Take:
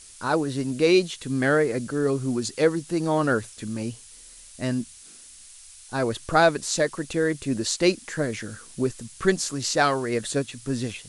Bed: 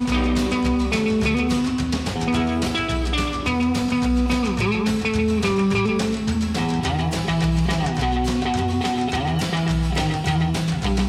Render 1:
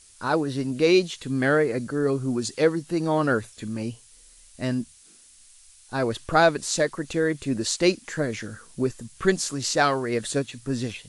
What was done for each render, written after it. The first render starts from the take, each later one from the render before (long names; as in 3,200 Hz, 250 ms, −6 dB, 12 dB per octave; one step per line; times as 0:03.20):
noise reduction from a noise print 6 dB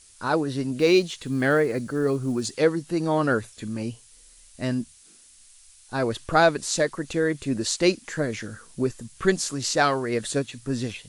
0:00.79–0:02.56: one scale factor per block 7 bits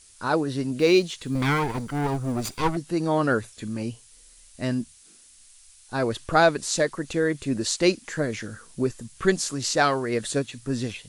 0:01.35–0:02.77: lower of the sound and its delayed copy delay 0.85 ms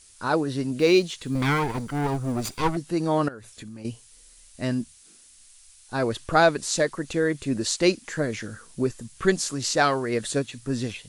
0:03.28–0:03.85: downward compressor 10 to 1, threshold −36 dBFS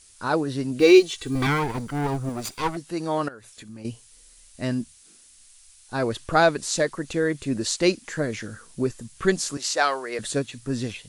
0:00.80–0:01.47: comb filter 2.6 ms, depth 99%
0:02.29–0:03.69: low-shelf EQ 360 Hz −7 dB
0:09.57–0:10.19: high-pass filter 510 Hz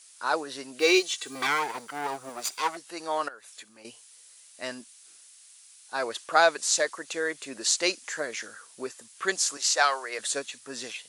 high-pass filter 660 Hz 12 dB per octave
dynamic equaliser 6,600 Hz, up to +4 dB, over −46 dBFS, Q 1.5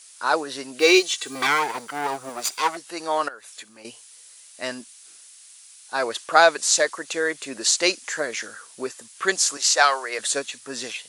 level +5.5 dB
brickwall limiter −2 dBFS, peak gain reduction 2.5 dB